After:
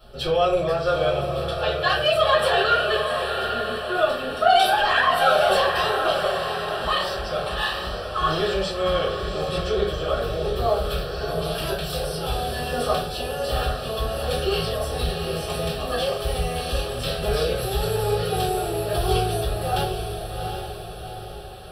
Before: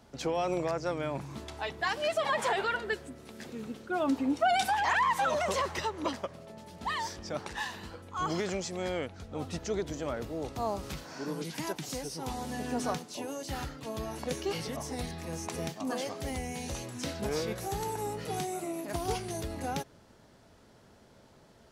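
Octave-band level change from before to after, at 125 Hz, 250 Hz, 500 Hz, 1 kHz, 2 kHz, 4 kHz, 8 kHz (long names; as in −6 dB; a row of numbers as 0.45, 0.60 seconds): +12.0, +2.5, +12.5, +9.5, +10.0, +14.5, +4.0 decibels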